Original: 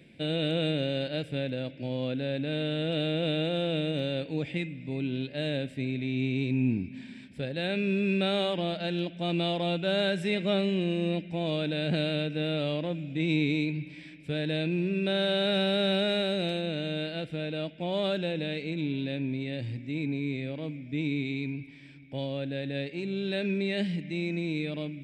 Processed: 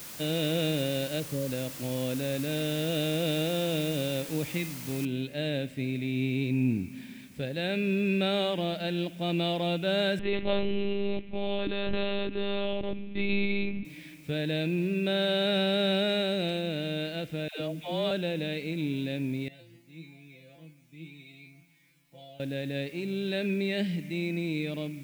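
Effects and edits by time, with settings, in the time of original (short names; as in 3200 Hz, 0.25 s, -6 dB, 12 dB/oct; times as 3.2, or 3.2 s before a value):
1.2–1.5 spectral delete 630–6600 Hz
5.05 noise floor step -43 dB -60 dB
10.19–13.85 monotone LPC vocoder at 8 kHz 200 Hz
17.48–18.11 dispersion lows, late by 0.128 s, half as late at 490 Hz
19.48–22.4 resonator 170 Hz, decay 0.33 s, mix 100%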